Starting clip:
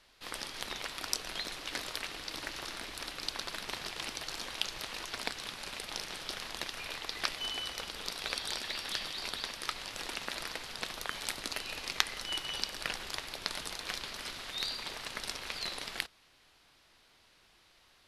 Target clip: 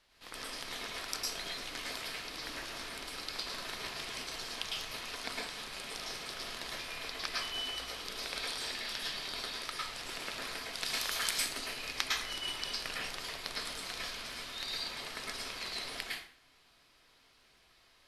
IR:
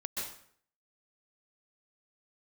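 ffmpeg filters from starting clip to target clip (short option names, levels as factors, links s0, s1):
-filter_complex "[0:a]asettb=1/sr,asplit=3[s0][s1][s2];[s0]atrim=end=10.734[s3];[s1]atrim=start=10.73:end=11.31,asetpts=PTS-STARTPTS,afade=t=in:d=0.004:c=qsin,afade=t=out:st=0.576:d=0.004:c=qsin,highshelf=f=2100:g=10[s4];[s2]atrim=start=11.306[s5];[s3][s4]acrossfade=d=0.004:c1=hsin:c2=qsin[s6];[s6][s5]acrossfade=d=0.004:c1=qsin:c2=hsin[s7];[1:a]atrim=start_sample=2205,asetrate=52920,aresample=44100[s8];[s7][s8]afir=irnorm=-1:irlink=0,volume=0.841"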